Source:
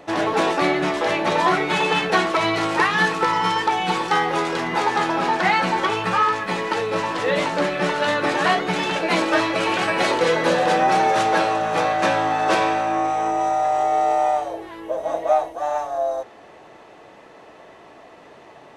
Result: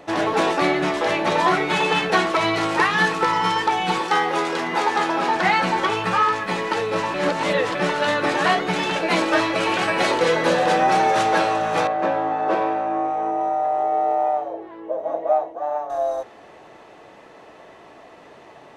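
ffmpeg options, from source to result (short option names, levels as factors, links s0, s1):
-filter_complex "[0:a]asettb=1/sr,asplit=3[s0][s1][s2];[s0]atrim=end=4.004[s3];[s1]atrim=start=4:end=5.36,asetpts=PTS-STARTPTS,afade=t=in:d=0.004:c=qsin,afade=t=out:st=1.356:d=0.004:c=qsin,highpass=200[s4];[s2]atrim=start=5.356[s5];[s3][s4]acrossfade=d=0.004:c1=hsin:c2=qsin[s6];[s6][s5]acrossfade=d=0.004:c1=qsin:c2=hsin,asettb=1/sr,asplit=3[s7][s8][s9];[s7]atrim=end=11.874[s10];[s8]atrim=start=11.87:end=15.9,asetpts=PTS-STARTPTS,afade=t=in:d=0.004:c=qsin,afade=t=out:st=4.026:d=0.004:c=qsin,bandpass=f=460:t=q:w=0.65[s11];[s9]atrim=start=15.896[s12];[s10][s11]acrossfade=d=0.004:c1=hsin:c2=qsin[s13];[s13][s12]acrossfade=d=0.004:c1=qsin:c2=hsin,asplit=3[s14][s15][s16];[s14]atrim=end=7.142[s17];[s15]atrim=start=7.138:end=7.752,asetpts=PTS-STARTPTS,areverse[s18];[s16]atrim=start=7.748[s19];[s17][s18]acrossfade=d=0.004:c1=hsin:c2=hsin[s20];[s20][s19]acrossfade=d=0.004:c1=hsin:c2=hsin"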